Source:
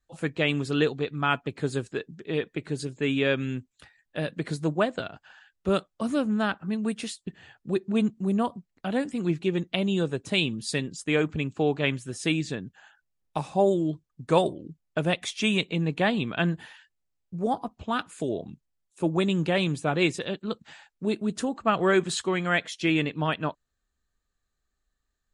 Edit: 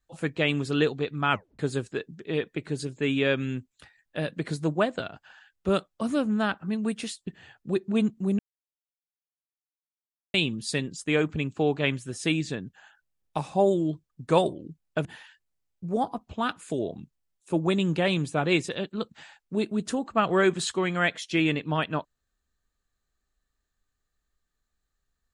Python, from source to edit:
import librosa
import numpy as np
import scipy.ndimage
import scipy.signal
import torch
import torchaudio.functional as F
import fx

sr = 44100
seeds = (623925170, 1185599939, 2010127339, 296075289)

y = fx.edit(x, sr, fx.tape_stop(start_s=1.32, length_s=0.27),
    fx.silence(start_s=8.39, length_s=1.95),
    fx.cut(start_s=15.05, length_s=1.5), tone=tone)